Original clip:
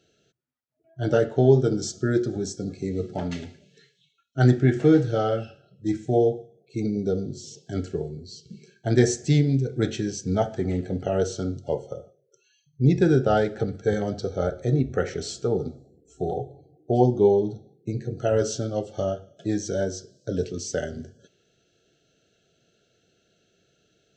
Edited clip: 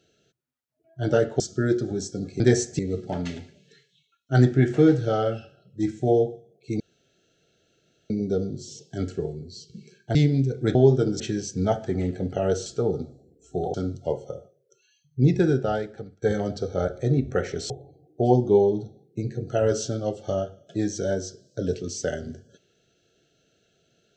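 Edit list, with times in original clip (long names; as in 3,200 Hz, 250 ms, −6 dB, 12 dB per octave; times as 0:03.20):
0:01.40–0:01.85: move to 0:09.90
0:06.86: splice in room tone 1.30 s
0:08.91–0:09.30: move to 0:02.85
0:12.89–0:13.84: fade out, to −24 dB
0:15.32–0:16.40: move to 0:11.36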